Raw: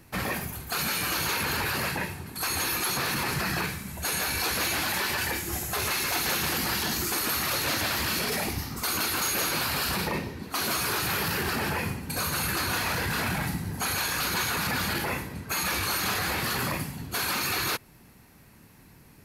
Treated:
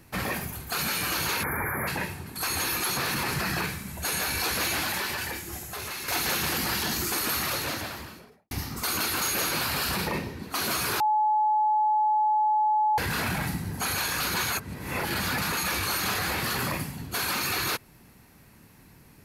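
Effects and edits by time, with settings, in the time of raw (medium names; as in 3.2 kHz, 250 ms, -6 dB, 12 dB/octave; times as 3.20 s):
1.43–1.88 s: spectral selection erased 2.4–10 kHz
4.77–6.08 s: fade out quadratic, to -7.5 dB
7.37–8.51 s: studio fade out
11.00–12.98 s: bleep 855 Hz -20 dBFS
14.52–15.57 s: reverse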